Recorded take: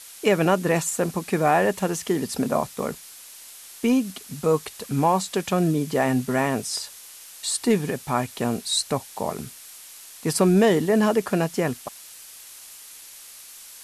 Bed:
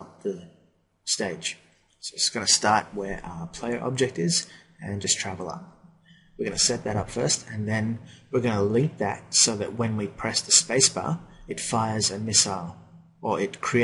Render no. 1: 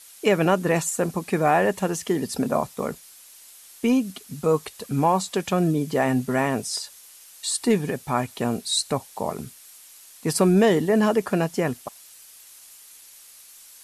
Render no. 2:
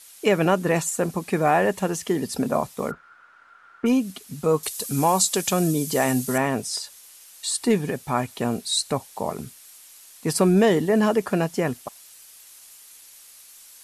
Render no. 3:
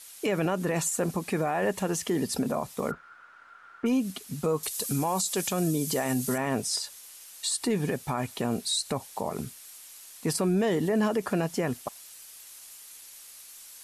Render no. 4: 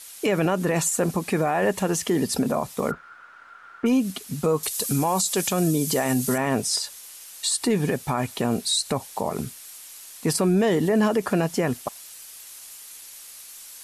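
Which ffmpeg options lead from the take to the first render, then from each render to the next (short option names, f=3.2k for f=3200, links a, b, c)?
-af "afftdn=nr=6:nf=-44"
-filter_complex "[0:a]asplit=3[a][b][c];[a]afade=t=out:st=2.9:d=0.02[d];[b]lowpass=f=1.4k:t=q:w=15,afade=t=in:st=2.9:d=0.02,afade=t=out:st=3.85:d=0.02[e];[c]afade=t=in:st=3.85:d=0.02[f];[d][e][f]amix=inputs=3:normalize=0,asettb=1/sr,asplit=3[g][h][i];[g]atrim=end=4.634[j];[h]atrim=start=4.63:end=6.38,asetpts=PTS-STARTPTS,afade=t=in:d=0.004:c=qsin,afade=t=out:st=1.746:d=0.004:c=qsin,bass=f=250:g=-1,treble=f=4k:g=14[k];[i]atrim=start=6.376[l];[j][k]acrossfade=d=0.004:c1=hsin:c2=qsin[m];[m][l]acrossfade=d=0.004:c1=qsin:c2=hsin"
-af "alimiter=limit=-18.5dB:level=0:latency=1:release=80"
-af "volume=5dB"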